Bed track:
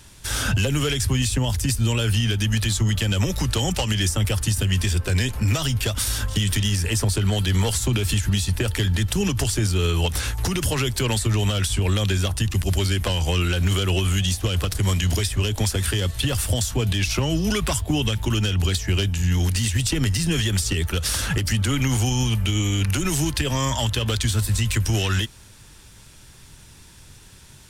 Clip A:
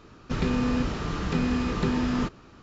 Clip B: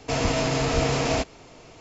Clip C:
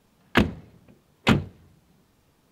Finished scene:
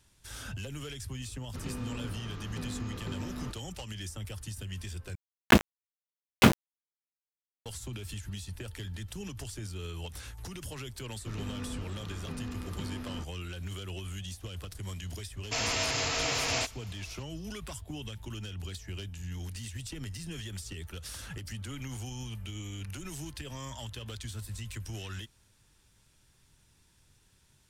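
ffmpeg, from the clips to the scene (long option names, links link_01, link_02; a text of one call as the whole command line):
ffmpeg -i bed.wav -i cue0.wav -i cue1.wav -i cue2.wav -filter_complex "[1:a]asplit=2[link_01][link_02];[0:a]volume=-18.5dB[link_03];[3:a]aeval=exprs='val(0)*gte(abs(val(0)),0.106)':channel_layout=same[link_04];[2:a]tiltshelf=frequency=870:gain=-9[link_05];[link_03]asplit=2[link_06][link_07];[link_06]atrim=end=5.154[link_08];[link_04]atrim=end=2.51,asetpts=PTS-STARTPTS,volume=-0.5dB[link_09];[link_07]atrim=start=7.656[link_10];[link_01]atrim=end=2.62,asetpts=PTS-STARTPTS,volume=-14dB,afade=type=in:duration=0.004:curve=hsin,afade=type=out:start_time=2.616:duration=0.004:curve=hsin,adelay=1240[link_11];[link_02]atrim=end=2.62,asetpts=PTS-STARTPTS,volume=-15dB,afade=type=in:duration=0.004:curve=hsin,afade=type=out:start_time=2.616:duration=0.004:curve=hsin,adelay=10960[link_12];[link_05]atrim=end=1.8,asetpts=PTS-STARTPTS,volume=-8dB,afade=type=in:duration=0.004:curve=hsin,afade=type=out:start_time=1.796:duration=0.004:curve=hsin,adelay=15430[link_13];[link_08][link_09]acrossfade=duration=0.004:curve1=hsin:curve2=hsin[link_14];[link_14][link_10]acrossfade=duration=0.004:curve1=hsin:curve2=hsin[link_15];[link_15][link_11][link_12][link_13]amix=inputs=4:normalize=0" out.wav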